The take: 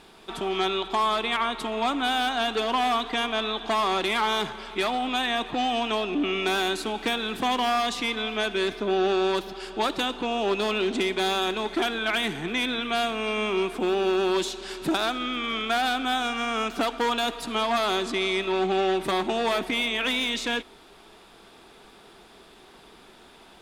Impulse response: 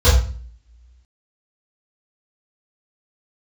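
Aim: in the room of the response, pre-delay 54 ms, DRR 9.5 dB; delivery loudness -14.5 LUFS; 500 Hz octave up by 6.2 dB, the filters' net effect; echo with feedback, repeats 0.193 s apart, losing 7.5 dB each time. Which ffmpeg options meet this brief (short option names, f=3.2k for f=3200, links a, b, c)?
-filter_complex "[0:a]equalizer=f=500:t=o:g=9,aecho=1:1:193|386|579|772|965:0.422|0.177|0.0744|0.0312|0.0131,asplit=2[a][b];[1:a]atrim=start_sample=2205,adelay=54[c];[b][c]afir=irnorm=-1:irlink=0,volume=-32dB[d];[a][d]amix=inputs=2:normalize=0,volume=6.5dB"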